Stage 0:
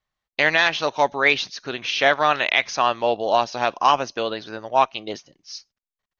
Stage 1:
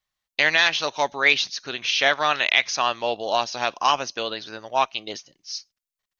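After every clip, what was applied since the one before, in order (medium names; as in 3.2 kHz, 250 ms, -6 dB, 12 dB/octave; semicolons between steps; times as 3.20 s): treble shelf 2.1 kHz +11 dB; trim -5.5 dB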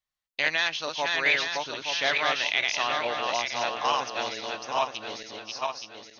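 backward echo that repeats 436 ms, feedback 59%, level -2 dB; trim -7.5 dB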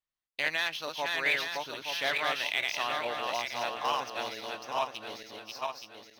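median filter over 5 samples; trim -4.5 dB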